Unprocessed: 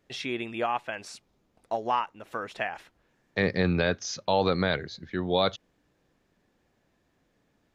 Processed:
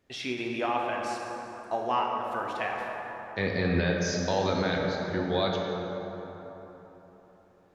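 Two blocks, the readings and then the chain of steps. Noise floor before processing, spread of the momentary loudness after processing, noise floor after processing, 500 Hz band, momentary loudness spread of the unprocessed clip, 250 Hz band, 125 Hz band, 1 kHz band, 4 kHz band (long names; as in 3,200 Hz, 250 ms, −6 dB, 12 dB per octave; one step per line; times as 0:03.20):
−72 dBFS, 12 LU, −59 dBFS, 0.0 dB, 12 LU, +0.5 dB, +0.5 dB, +0.5 dB, −2.0 dB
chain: brickwall limiter −15.5 dBFS, peak gain reduction 4 dB
dense smooth reverb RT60 4 s, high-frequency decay 0.45×, DRR −1 dB
every ending faded ahead of time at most 130 dB per second
level −2 dB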